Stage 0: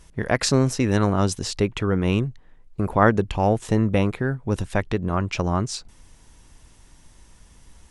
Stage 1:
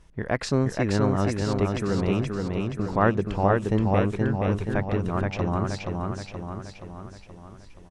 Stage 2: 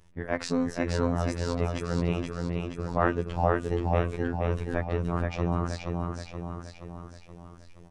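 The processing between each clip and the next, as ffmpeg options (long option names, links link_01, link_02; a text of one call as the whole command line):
ffmpeg -i in.wav -filter_complex "[0:a]lowpass=frequency=2600:poles=1,asplit=2[link_01][link_02];[link_02]aecho=0:1:475|950|1425|1900|2375|2850|3325|3800:0.668|0.368|0.202|0.111|0.0612|0.0336|0.0185|0.0102[link_03];[link_01][link_03]amix=inputs=2:normalize=0,volume=-4dB" out.wav
ffmpeg -i in.wav -af "bandreject=frequency=241.3:width_type=h:width=4,bandreject=frequency=482.6:width_type=h:width=4,bandreject=frequency=723.9:width_type=h:width=4,bandreject=frequency=965.2:width_type=h:width=4,bandreject=frequency=1206.5:width_type=h:width=4,bandreject=frequency=1447.8:width_type=h:width=4,bandreject=frequency=1689.1:width_type=h:width=4,bandreject=frequency=1930.4:width_type=h:width=4,bandreject=frequency=2171.7:width_type=h:width=4,bandreject=frequency=2413:width_type=h:width=4,bandreject=frequency=2654.3:width_type=h:width=4,bandreject=frequency=2895.6:width_type=h:width=4,bandreject=frequency=3136.9:width_type=h:width=4,bandreject=frequency=3378.2:width_type=h:width=4,bandreject=frequency=3619.5:width_type=h:width=4,bandreject=frequency=3860.8:width_type=h:width=4,afftfilt=real='hypot(re,im)*cos(PI*b)':imag='0':win_size=2048:overlap=0.75" out.wav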